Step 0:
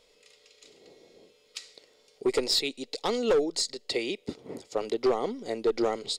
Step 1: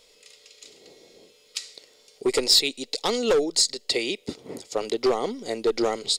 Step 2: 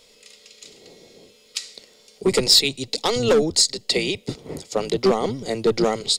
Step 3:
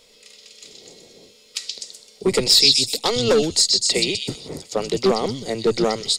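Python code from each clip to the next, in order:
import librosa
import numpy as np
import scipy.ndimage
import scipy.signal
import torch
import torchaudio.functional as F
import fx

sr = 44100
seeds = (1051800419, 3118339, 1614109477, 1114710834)

y1 = fx.high_shelf(x, sr, hz=3300.0, db=8.5)
y1 = y1 * librosa.db_to_amplitude(2.5)
y2 = fx.octave_divider(y1, sr, octaves=1, level_db=-2.0)
y2 = y2 * librosa.db_to_amplitude(3.5)
y3 = fx.echo_stepped(y2, sr, ms=126, hz=4200.0, octaves=0.7, feedback_pct=70, wet_db=0.0)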